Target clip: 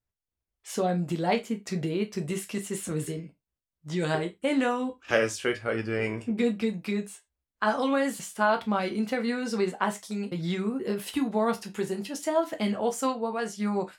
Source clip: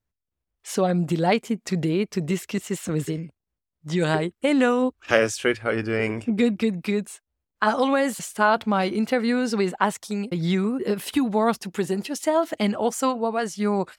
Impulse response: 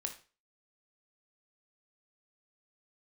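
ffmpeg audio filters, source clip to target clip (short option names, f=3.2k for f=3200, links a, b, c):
-filter_complex "[0:a]asettb=1/sr,asplit=3[a][b][c];[a]atrim=end=2.184[d];[b]atrim=start=2.18:end=3.12,asetpts=PTS-STARTPTS,afade=t=in:d=0.004:c=qsin,afade=t=out:st=0.936:d=0.004:c=qsin,equalizer=f=10k:t=o:w=0.45:g=10[e];[c]atrim=start=3.116[f];[d][e]acrossfade=d=0.004:c1=hsin:c2=qsin[g];[g][f]acrossfade=d=0.004:c1=qsin:c2=hsin[h];[1:a]atrim=start_sample=2205,afade=t=out:st=0.29:d=0.01,atrim=end_sample=13230,asetrate=79380,aresample=44100[i];[h][i]afir=irnorm=-1:irlink=0,volume=1dB"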